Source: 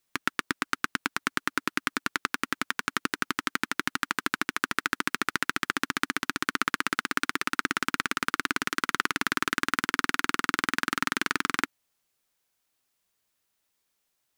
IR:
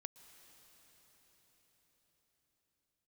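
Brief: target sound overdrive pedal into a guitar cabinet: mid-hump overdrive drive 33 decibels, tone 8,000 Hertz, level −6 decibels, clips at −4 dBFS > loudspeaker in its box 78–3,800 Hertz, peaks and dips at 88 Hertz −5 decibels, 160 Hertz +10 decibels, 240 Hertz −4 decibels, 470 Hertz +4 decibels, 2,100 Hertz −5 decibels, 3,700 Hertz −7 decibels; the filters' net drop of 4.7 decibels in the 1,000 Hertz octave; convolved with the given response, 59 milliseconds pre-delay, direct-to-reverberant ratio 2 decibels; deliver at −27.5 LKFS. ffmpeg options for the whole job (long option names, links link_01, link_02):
-filter_complex "[0:a]equalizer=frequency=1000:width_type=o:gain=-6.5,asplit=2[link_01][link_02];[1:a]atrim=start_sample=2205,adelay=59[link_03];[link_02][link_03]afir=irnorm=-1:irlink=0,volume=3.5dB[link_04];[link_01][link_04]amix=inputs=2:normalize=0,asplit=2[link_05][link_06];[link_06]highpass=frequency=720:poles=1,volume=33dB,asoftclip=type=tanh:threshold=-4dB[link_07];[link_05][link_07]amix=inputs=2:normalize=0,lowpass=frequency=8000:poles=1,volume=-6dB,highpass=78,equalizer=frequency=88:width_type=q:width=4:gain=-5,equalizer=frequency=160:width_type=q:width=4:gain=10,equalizer=frequency=240:width_type=q:width=4:gain=-4,equalizer=frequency=470:width_type=q:width=4:gain=4,equalizer=frequency=2100:width_type=q:width=4:gain=-5,equalizer=frequency=3700:width_type=q:width=4:gain=-7,lowpass=frequency=3800:width=0.5412,lowpass=frequency=3800:width=1.3066,volume=-10dB"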